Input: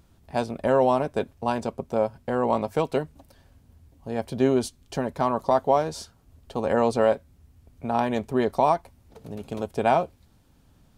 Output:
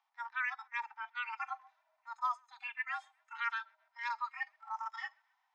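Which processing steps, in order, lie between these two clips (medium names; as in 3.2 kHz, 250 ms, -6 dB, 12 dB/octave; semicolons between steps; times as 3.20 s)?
mistuned SSB +240 Hz 170–2700 Hz; reverse; compression 5:1, threshold -34 dBFS, peak gain reduction 17.5 dB; reverse; band-stop 810 Hz, Q 19; wide varispeed 1.98×; harmonic-percussive split percussive -14 dB; on a send: thinning echo 131 ms, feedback 57%, high-pass 870 Hz, level -17 dB; on the sum: spectral noise reduction 16 dB; trim +3.5 dB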